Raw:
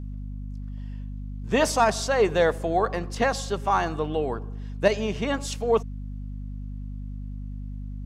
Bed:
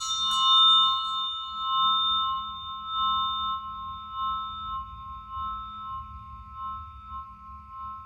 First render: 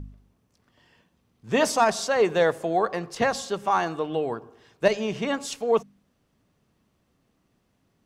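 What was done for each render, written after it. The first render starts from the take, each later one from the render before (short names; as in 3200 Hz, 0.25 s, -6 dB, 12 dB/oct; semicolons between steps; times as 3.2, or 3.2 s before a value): de-hum 50 Hz, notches 5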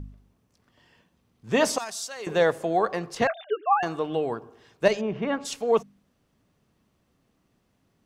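1.78–2.27 pre-emphasis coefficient 0.9; 3.27–3.83 sine-wave speech; 5–5.44 LPF 1300 Hz -> 2800 Hz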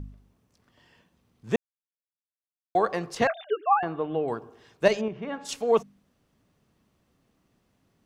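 1.56–2.75 mute; 3.79–4.28 air absorption 460 m; 5.08–5.49 resonator 60 Hz, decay 1.2 s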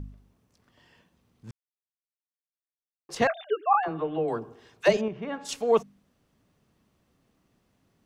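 1.51–3.09 mute; 3.73–4.97 dispersion lows, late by 56 ms, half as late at 460 Hz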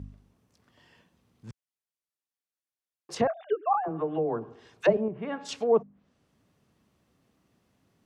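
HPF 54 Hz; treble ducked by the level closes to 850 Hz, closed at -23.5 dBFS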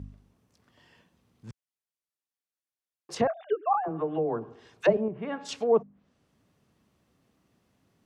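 nothing audible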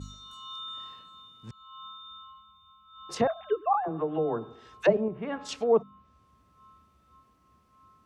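add bed -21.5 dB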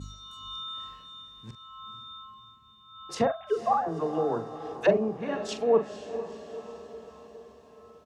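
doubler 42 ms -10 dB; diffused feedback echo 0.48 s, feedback 57%, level -12 dB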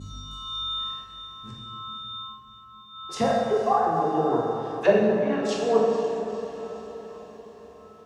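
plate-style reverb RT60 2.2 s, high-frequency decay 0.6×, DRR -3 dB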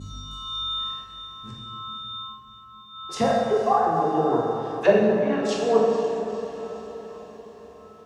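gain +1.5 dB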